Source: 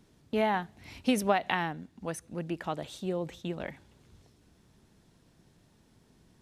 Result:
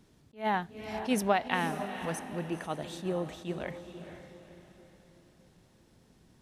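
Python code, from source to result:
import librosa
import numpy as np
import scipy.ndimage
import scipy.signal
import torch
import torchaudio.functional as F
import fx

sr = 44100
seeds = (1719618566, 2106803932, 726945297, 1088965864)

y = fx.echo_diffused(x, sr, ms=488, feedback_pct=41, wet_db=-10.0)
y = fx.attack_slew(y, sr, db_per_s=240.0)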